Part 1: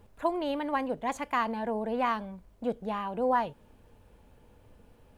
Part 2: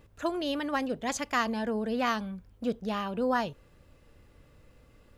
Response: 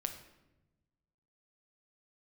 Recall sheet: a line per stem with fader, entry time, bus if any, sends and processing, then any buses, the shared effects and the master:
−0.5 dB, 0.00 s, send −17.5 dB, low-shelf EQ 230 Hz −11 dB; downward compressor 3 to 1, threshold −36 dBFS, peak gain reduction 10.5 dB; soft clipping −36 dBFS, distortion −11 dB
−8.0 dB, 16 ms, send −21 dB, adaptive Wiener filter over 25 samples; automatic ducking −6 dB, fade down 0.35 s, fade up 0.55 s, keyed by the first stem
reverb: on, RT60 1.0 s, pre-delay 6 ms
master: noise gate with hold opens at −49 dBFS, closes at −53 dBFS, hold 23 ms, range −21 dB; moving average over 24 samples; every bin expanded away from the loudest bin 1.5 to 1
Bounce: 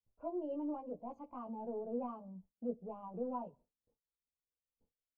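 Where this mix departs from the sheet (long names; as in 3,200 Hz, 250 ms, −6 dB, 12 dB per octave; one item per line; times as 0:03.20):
stem 2: missing adaptive Wiener filter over 25 samples
reverb return +8.0 dB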